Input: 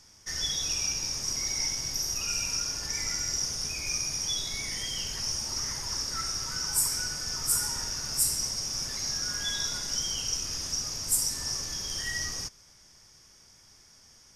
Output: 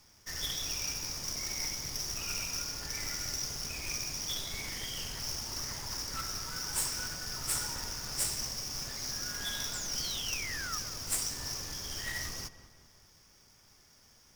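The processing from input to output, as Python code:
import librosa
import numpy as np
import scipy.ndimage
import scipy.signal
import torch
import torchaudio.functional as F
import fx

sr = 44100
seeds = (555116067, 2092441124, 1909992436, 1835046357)

y = fx.halfwave_hold(x, sr)
y = fx.spec_paint(y, sr, seeds[0], shape='fall', start_s=9.73, length_s=1.05, low_hz=1200.0, high_hz=7800.0, level_db=-33.0)
y = fx.echo_filtered(y, sr, ms=194, feedback_pct=52, hz=2200.0, wet_db=-13)
y = fx.doppler_dist(y, sr, depth_ms=0.2)
y = F.gain(torch.from_numpy(y), -8.0).numpy()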